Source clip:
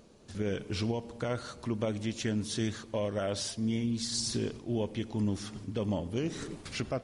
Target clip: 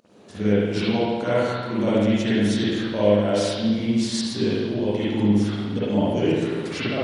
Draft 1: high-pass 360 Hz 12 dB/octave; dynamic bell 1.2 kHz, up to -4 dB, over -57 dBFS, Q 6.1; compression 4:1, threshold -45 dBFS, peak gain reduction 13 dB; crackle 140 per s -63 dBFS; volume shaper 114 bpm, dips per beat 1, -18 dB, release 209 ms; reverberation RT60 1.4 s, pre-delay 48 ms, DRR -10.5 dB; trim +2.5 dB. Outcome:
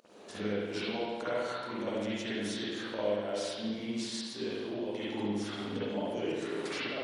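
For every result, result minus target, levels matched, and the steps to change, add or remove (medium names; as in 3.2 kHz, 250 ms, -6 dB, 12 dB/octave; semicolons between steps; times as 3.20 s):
compression: peak gain reduction +13 dB; 125 Hz band -6.5 dB
remove: compression 4:1, threshold -45 dBFS, peak gain reduction 13 dB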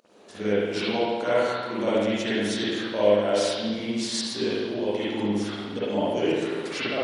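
125 Hz band -8.0 dB
change: high-pass 160 Hz 12 dB/octave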